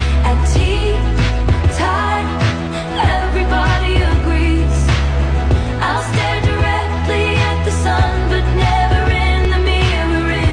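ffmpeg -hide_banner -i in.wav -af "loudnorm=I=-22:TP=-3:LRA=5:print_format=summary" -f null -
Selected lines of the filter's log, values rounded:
Input Integrated:    -15.2 LUFS
Input True Peak:      -3.2 dBTP
Input LRA:             1.1 LU
Input Threshold:     -25.2 LUFS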